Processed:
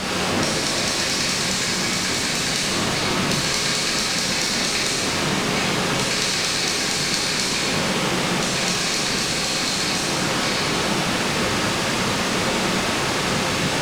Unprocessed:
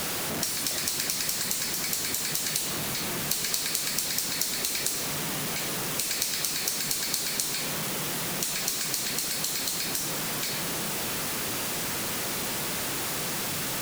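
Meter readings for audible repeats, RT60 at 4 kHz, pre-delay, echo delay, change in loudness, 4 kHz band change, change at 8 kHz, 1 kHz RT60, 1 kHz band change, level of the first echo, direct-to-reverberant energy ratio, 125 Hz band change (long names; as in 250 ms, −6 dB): no echo audible, 1.8 s, 6 ms, no echo audible, +7.0 dB, +9.5 dB, +3.5 dB, 1.9 s, +12.5 dB, no echo audible, −4.5 dB, +12.0 dB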